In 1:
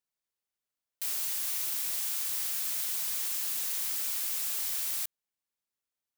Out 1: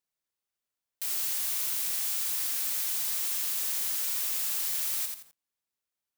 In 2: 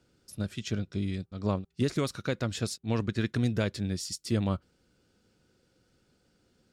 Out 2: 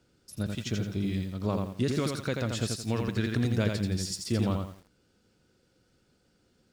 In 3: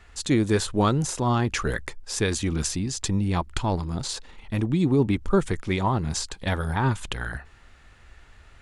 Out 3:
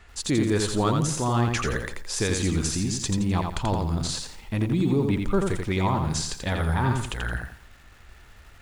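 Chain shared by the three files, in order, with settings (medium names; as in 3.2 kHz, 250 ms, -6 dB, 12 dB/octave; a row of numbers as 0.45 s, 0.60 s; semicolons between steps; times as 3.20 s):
in parallel at +2 dB: peak limiter -20 dBFS; on the sum: bit-crushed delay 85 ms, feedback 35%, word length 8-bit, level -4 dB; trim -6.5 dB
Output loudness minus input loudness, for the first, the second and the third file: +2.0 LU, +1.0 LU, 0.0 LU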